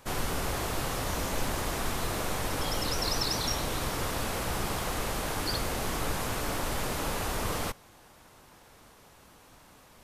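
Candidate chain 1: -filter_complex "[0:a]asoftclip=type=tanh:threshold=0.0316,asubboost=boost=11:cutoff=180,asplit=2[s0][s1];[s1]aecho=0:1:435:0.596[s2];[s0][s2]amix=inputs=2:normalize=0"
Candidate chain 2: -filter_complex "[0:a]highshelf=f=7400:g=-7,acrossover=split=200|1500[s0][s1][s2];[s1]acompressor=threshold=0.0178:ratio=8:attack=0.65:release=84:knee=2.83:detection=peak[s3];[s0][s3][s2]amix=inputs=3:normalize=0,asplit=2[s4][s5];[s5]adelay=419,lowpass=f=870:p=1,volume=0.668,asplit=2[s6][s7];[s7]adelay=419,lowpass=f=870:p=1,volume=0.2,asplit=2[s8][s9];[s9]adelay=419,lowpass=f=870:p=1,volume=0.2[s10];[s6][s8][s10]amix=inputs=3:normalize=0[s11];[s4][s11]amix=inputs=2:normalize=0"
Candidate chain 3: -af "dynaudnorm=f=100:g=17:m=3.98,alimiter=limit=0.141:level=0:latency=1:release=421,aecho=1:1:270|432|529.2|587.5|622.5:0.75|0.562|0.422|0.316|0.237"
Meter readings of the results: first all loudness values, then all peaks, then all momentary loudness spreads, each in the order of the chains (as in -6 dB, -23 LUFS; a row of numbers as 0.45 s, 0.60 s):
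-26.0 LUFS, -33.0 LUFS, -24.5 LUFS; -8.0 dBFS, -17.5 dBFS, -10.0 dBFS; 11 LU, 4 LU, 17 LU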